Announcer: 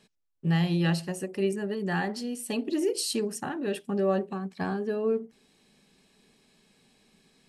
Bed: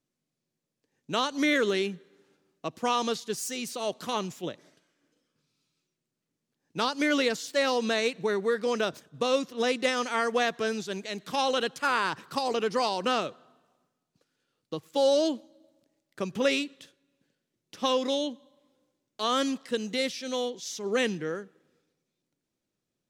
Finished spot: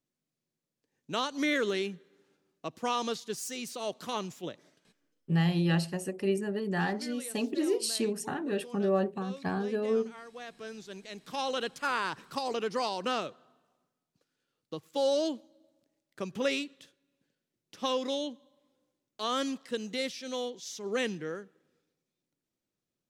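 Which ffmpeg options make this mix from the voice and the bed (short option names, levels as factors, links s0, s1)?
-filter_complex "[0:a]adelay=4850,volume=0.841[s0];[1:a]volume=3.98,afade=t=out:st=4.88:d=0.43:silence=0.149624,afade=t=in:st=10.34:d=1.39:silence=0.158489[s1];[s0][s1]amix=inputs=2:normalize=0"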